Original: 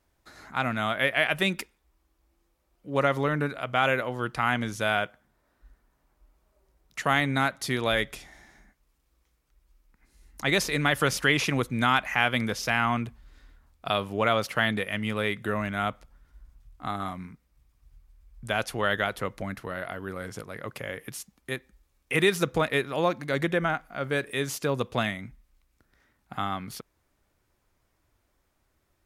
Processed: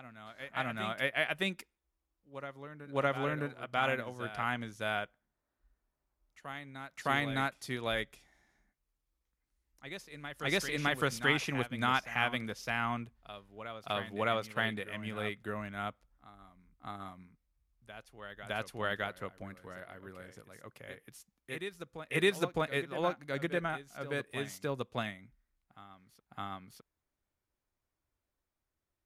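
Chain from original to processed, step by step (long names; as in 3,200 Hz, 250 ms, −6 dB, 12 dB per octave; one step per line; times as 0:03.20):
backwards echo 611 ms −8.5 dB
expander for the loud parts 1.5 to 1, over −41 dBFS
level −5.5 dB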